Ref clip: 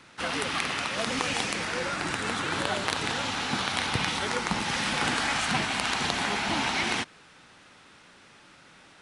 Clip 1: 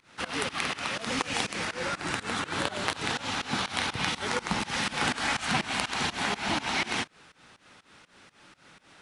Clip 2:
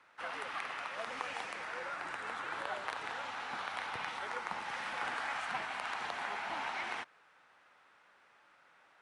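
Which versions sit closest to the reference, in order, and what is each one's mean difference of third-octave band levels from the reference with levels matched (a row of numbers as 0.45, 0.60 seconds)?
1, 2; 2.5, 6.5 decibels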